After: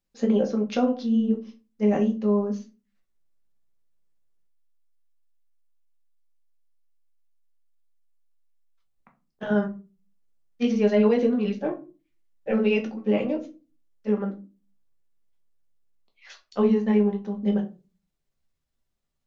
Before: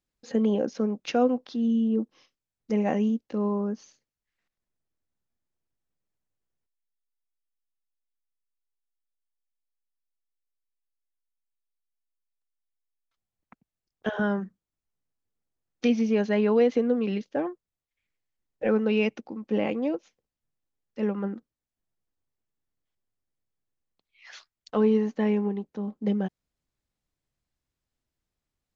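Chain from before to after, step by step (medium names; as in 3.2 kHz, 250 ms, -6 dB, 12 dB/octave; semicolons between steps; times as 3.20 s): granular stretch 0.67×, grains 119 ms; simulated room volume 130 m³, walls furnished, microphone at 1.2 m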